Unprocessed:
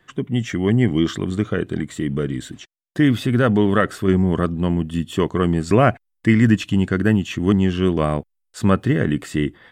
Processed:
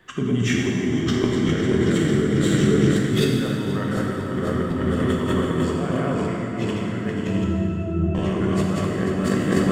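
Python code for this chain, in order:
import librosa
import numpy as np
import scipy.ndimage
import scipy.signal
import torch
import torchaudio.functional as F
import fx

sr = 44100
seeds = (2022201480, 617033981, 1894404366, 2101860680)

p1 = fx.reverse_delay_fb(x, sr, ms=248, feedback_pct=81, wet_db=-4)
p2 = fx.octave_resonator(p1, sr, note='E', decay_s=0.5, at=(7.27, 8.15))
p3 = p2 + fx.echo_single(p2, sr, ms=168, db=-14.0, dry=0)
p4 = fx.over_compress(p3, sr, threshold_db=-23.0, ratio=-1.0)
p5 = fx.rev_plate(p4, sr, seeds[0], rt60_s=2.7, hf_ratio=0.75, predelay_ms=0, drr_db=-1.5)
y = p5 * 10.0 ** (-3.0 / 20.0)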